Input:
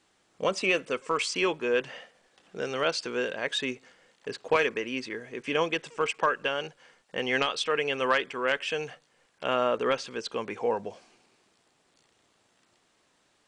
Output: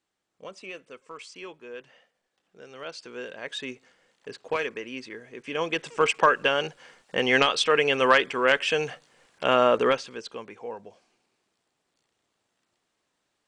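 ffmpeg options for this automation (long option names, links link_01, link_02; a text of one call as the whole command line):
ffmpeg -i in.wav -af "volume=6dB,afade=type=in:start_time=2.66:duration=1.04:silence=0.298538,afade=type=in:start_time=5.54:duration=0.5:silence=0.316228,afade=type=out:start_time=9.83:duration=0.19:silence=0.446684,afade=type=out:start_time=10.02:duration=0.53:silence=0.398107" out.wav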